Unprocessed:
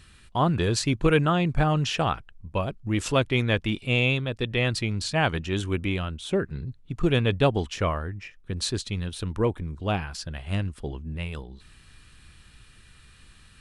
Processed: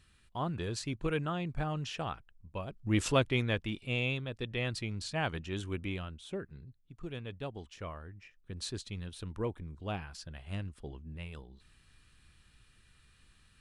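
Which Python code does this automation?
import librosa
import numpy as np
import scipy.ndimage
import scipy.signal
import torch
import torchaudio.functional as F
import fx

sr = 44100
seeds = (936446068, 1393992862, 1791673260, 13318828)

y = fx.gain(x, sr, db=fx.line((2.66, -12.5), (2.95, -2.5), (3.7, -10.0), (5.94, -10.0), (6.93, -19.5), (7.48, -19.5), (8.65, -11.0)))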